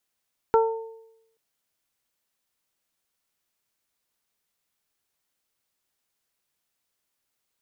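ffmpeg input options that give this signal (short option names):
-f lavfi -i "aevalsrc='0.178*pow(10,-3*t/0.87)*sin(2*PI*450*t)+0.133*pow(10,-3*t/0.63)*sin(2*PI*900*t)+0.0668*pow(10,-3*t/0.25)*sin(2*PI*1350*t)':d=0.83:s=44100"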